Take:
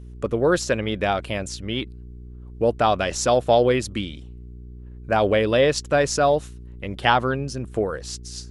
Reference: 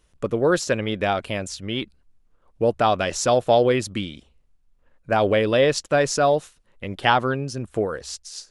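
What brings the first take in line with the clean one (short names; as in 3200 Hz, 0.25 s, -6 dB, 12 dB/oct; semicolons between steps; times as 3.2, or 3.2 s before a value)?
de-hum 60.4 Hz, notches 7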